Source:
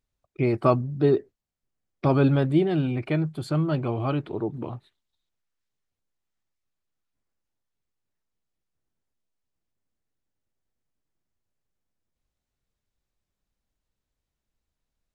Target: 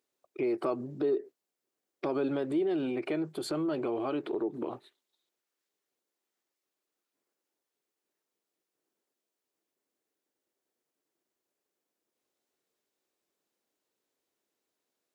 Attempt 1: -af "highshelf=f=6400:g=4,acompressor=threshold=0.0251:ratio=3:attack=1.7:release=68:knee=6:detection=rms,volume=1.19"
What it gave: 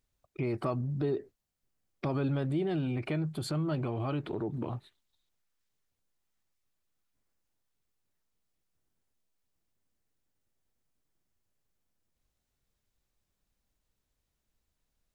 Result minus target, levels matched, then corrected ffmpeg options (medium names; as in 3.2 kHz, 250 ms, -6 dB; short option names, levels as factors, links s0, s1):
500 Hz band -3.5 dB
-af "highpass=f=360:t=q:w=2.1,highshelf=f=6400:g=4,acompressor=threshold=0.0251:ratio=3:attack=1.7:release=68:knee=6:detection=rms,volume=1.19"